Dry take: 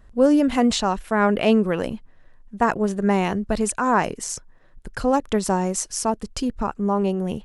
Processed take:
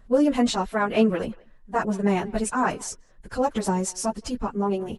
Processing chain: speakerphone echo 270 ms, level -22 dB; plain phase-vocoder stretch 0.67×

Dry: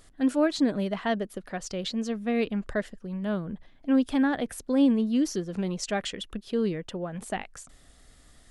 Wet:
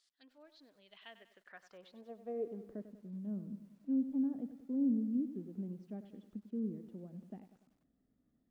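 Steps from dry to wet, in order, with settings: low-pass that closes with the level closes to 1.2 kHz, closed at -21 dBFS; dynamic bell 1.4 kHz, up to -5 dB, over -46 dBFS, Q 1.1; band-pass sweep 4.7 kHz -> 230 Hz, 0.73–2.90 s; bit-crushed delay 97 ms, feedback 55%, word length 10-bit, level -12 dB; trim -8.5 dB

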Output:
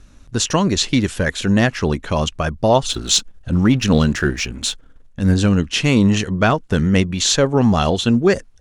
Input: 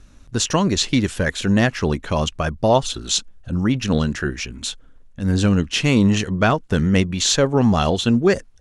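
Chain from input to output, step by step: 2.89–5.34 s: waveshaping leveller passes 1; trim +1.5 dB

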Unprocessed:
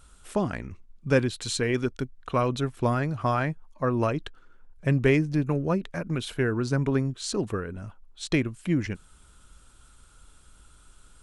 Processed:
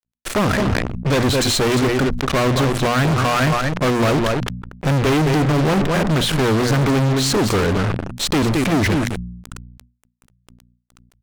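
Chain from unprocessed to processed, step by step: treble shelf 2.3 kHz -3.5 dB; delay 217 ms -13 dB; fuzz box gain 46 dB, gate -43 dBFS; treble shelf 7.8 kHz -6 dB; hum notches 60/120/180/240 Hz; decay stretcher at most 54 dB/s; trim -1.5 dB

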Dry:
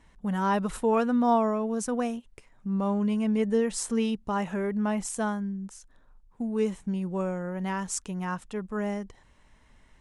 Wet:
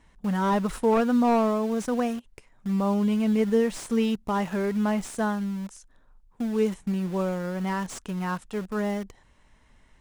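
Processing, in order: in parallel at -9 dB: word length cut 6-bit, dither none; on the sum: slew-rate limiter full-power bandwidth 87 Hz

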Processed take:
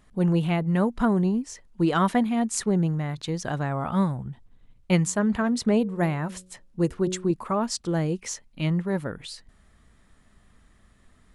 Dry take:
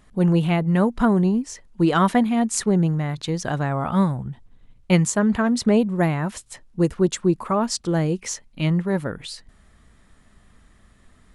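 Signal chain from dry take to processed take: 5.03–7.31 s: de-hum 91.99 Hz, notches 6; trim -4 dB

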